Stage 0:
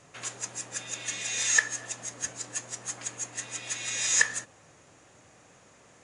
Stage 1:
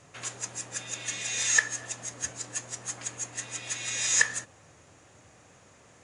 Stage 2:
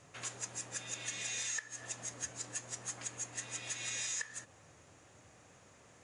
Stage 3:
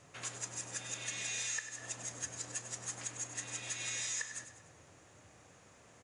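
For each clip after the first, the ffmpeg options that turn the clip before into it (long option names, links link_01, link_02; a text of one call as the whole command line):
ffmpeg -i in.wav -af "equalizer=frequency=83:width=1.5:gain=6.5" out.wav
ffmpeg -i in.wav -af "acompressor=threshold=-31dB:ratio=16,volume=-4.5dB" out.wav
ffmpeg -i in.wav -af "aecho=1:1:99|198|297|396|495:0.299|0.143|0.0688|0.033|0.0158" out.wav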